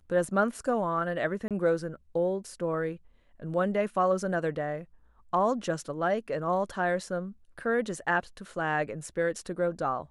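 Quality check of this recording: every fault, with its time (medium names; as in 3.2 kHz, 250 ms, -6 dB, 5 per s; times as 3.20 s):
1.48–1.51 s: dropout 27 ms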